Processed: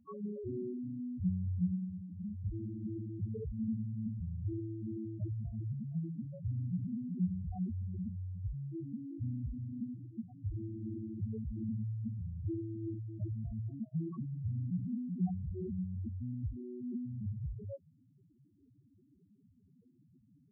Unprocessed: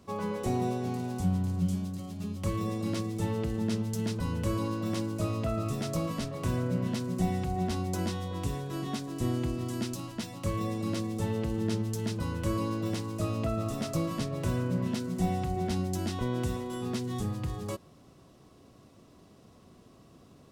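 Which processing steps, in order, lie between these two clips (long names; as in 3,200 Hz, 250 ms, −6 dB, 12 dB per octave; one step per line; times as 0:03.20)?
spectral peaks only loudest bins 2
Butterworth band-reject 660 Hz, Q 7.7
level −2 dB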